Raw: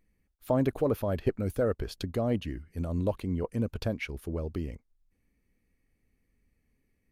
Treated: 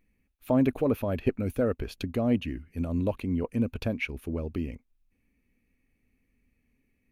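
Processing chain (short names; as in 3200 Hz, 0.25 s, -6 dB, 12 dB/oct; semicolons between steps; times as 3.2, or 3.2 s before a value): thirty-one-band EQ 250 Hz +7 dB, 2500 Hz +9 dB, 5000 Hz -5 dB, 8000 Hz -5 dB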